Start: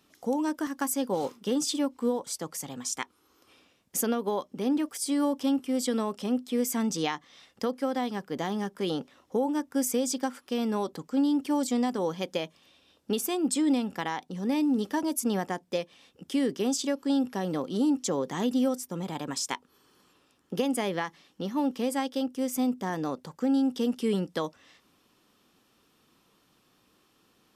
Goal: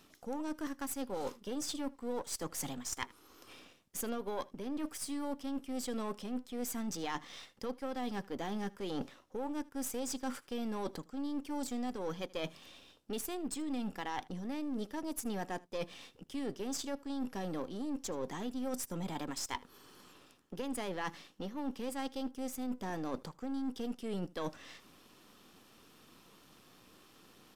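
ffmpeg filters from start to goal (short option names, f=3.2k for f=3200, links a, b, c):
-af "aeval=exprs='if(lt(val(0),0),0.447*val(0),val(0))':c=same,areverse,acompressor=threshold=-43dB:ratio=10,areverse,aecho=1:1:78:0.0708,volume=7.5dB"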